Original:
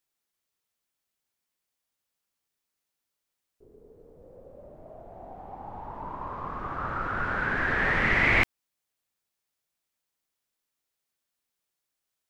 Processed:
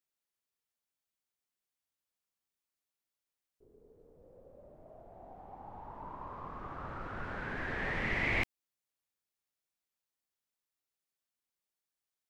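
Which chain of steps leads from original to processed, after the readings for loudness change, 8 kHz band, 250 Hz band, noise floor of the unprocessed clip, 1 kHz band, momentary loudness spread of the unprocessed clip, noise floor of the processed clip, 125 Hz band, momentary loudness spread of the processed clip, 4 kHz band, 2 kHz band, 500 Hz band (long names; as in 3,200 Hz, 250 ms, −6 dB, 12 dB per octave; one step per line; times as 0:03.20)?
−11.0 dB, can't be measured, −8.0 dB, −85 dBFS, −11.0 dB, 22 LU, below −85 dBFS, −8.0 dB, 22 LU, −8.5 dB, −11.0 dB, −8.5 dB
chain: dynamic equaliser 1,400 Hz, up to −7 dB, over −40 dBFS, Q 1.9
level −8 dB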